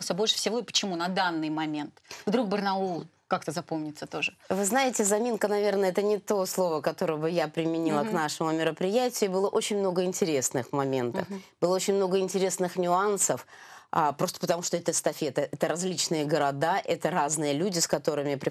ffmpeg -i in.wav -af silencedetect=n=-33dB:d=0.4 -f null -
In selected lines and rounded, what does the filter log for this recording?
silence_start: 13.40
silence_end: 13.93 | silence_duration: 0.53